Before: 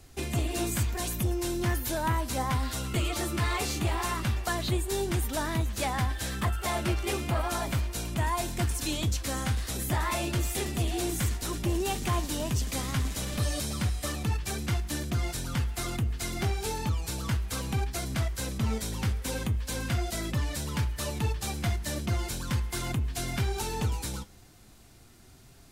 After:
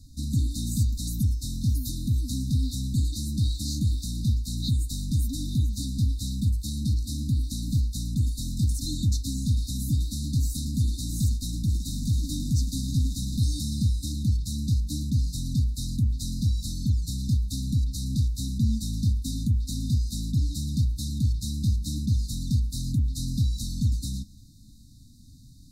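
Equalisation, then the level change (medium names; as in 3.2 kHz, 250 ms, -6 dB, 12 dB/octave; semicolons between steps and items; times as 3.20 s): brick-wall FIR band-stop 300–3600 Hz; treble shelf 5.9 kHz -11 dB; +5.5 dB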